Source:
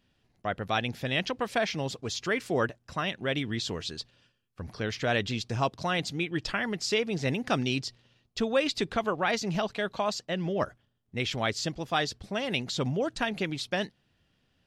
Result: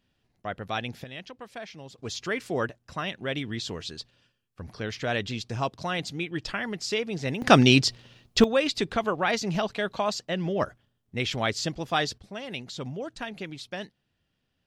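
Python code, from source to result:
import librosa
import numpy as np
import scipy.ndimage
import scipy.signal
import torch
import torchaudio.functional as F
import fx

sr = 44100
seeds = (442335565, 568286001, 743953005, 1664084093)

y = fx.gain(x, sr, db=fx.steps((0.0, -2.5), (1.04, -12.0), (1.98, -1.0), (7.42, 11.5), (8.44, 2.0), (12.18, -6.0)))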